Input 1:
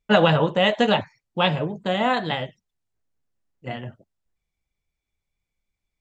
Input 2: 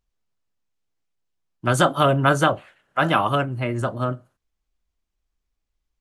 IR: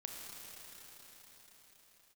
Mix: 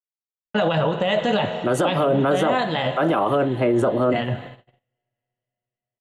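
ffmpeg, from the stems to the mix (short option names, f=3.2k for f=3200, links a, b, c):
-filter_complex "[0:a]adynamicequalizer=threshold=0.0178:dfrequency=640:dqfactor=3.6:tfrequency=640:tqfactor=3.6:attack=5:release=100:ratio=0.375:range=2:mode=boostabove:tftype=bell,adelay=450,volume=-3.5dB,asplit=2[a][b];[b]volume=-7dB[c];[1:a]highpass=130,equalizer=f=430:t=o:w=1.9:g=14.5,volume=-6.5dB[d];[2:a]atrim=start_sample=2205[e];[c][e]afir=irnorm=-1:irlink=0[f];[a][d][f]amix=inputs=3:normalize=0,agate=range=-39dB:threshold=-48dB:ratio=16:detection=peak,dynaudnorm=f=130:g=3:m=14dB,alimiter=limit=-11.5dB:level=0:latency=1:release=35"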